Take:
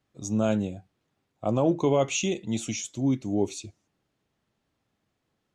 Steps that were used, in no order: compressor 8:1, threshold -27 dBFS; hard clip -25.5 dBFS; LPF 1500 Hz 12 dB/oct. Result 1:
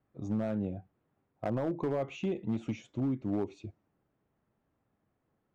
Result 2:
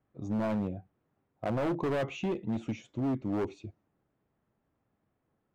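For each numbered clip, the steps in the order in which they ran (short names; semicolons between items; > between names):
compressor > LPF > hard clip; LPF > hard clip > compressor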